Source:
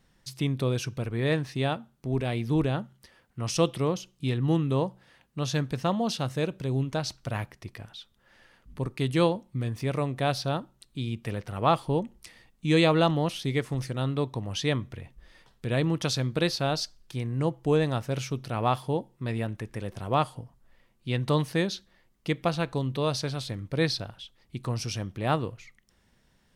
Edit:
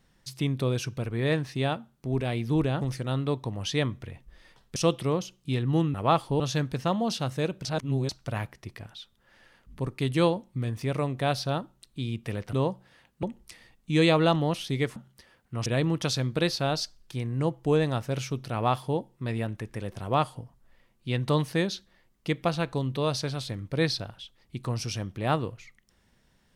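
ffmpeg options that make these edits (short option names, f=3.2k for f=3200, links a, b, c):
-filter_complex "[0:a]asplit=11[a][b][c][d][e][f][g][h][i][j][k];[a]atrim=end=2.812[l];[b]atrim=start=13.708:end=15.662[m];[c]atrim=start=3.508:end=4.692[n];[d]atrim=start=11.518:end=11.982[o];[e]atrim=start=5.388:end=6.642[p];[f]atrim=start=6.638:end=7.082,asetpts=PTS-STARTPTS,areverse[q];[g]atrim=start=7.078:end=11.522[r];[h]atrim=start=4.688:end=5.392[s];[i]atrim=start=11.978:end=13.712[t];[j]atrim=start=2.808:end=3.512[u];[k]atrim=start=15.658[v];[l][m]acrossfade=d=0.004:c1=hsin:c2=hsin[w];[w][n]acrossfade=d=0.004:c1=hsin:c2=hsin[x];[x][o]acrossfade=d=0.004:c1=hsin:c2=hsin[y];[y][p]acrossfade=d=0.004:c1=hsin:c2=hsin[z];[z][q]acrossfade=d=0.004:c1=hsin:c2=hsin[aa];[aa][r]acrossfade=d=0.004:c1=hsin:c2=hsin[ab];[ab][s]acrossfade=d=0.004:c1=hsin:c2=hsin[ac];[ac][t]acrossfade=d=0.004:c1=hsin:c2=hsin[ad];[ad][u]acrossfade=d=0.004:c1=hsin:c2=hsin[ae];[ae][v]acrossfade=d=0.004:c1=hsin:c2=hsin"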